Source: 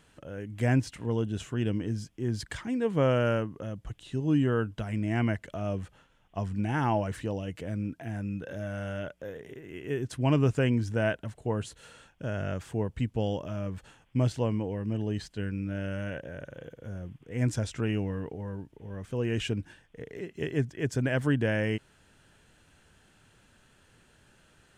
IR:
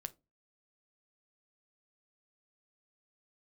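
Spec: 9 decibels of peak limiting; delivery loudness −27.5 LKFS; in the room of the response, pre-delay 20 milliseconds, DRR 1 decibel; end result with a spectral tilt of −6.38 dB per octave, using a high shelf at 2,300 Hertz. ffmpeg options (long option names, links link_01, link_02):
-filter_complex "[0:a]highshelf=frequency=2300:gain=4.5,alimiter=limit=-21.5dB:level=0:latency=1,asplit=2[link_01][link_02];[1:a]atrim=start_sample=2205,adelay=20[link_03];[link_02][link_03]afir=irnorm=-1:irlink=0,volume=2.5dB[link_04];[link_01][link_04]amix=inputs=2:normalize=0,volume=2.5dB"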